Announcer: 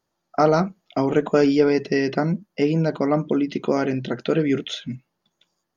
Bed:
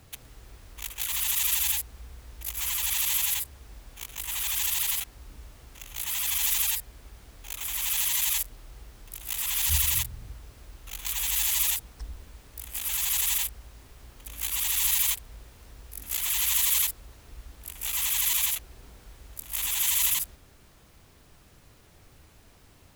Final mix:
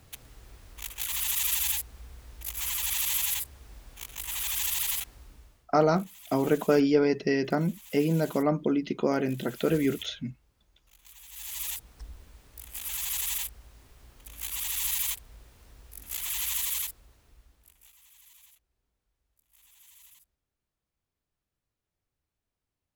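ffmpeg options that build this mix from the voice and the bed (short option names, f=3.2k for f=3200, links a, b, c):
-filter_complex "[0:a]adelay=5350,volume=-5dB[a];[1:a]volume=14.5dB,afade=t=out:st=5.1:d=0.59:silence=0.105925,afade=t=in:st=11.3:d=0.63:silence=0.149624,afade=t=out:st=16.41:d=1.54:silence=0.0473151[b];[a][b]amix=inputs=2:normalize=0"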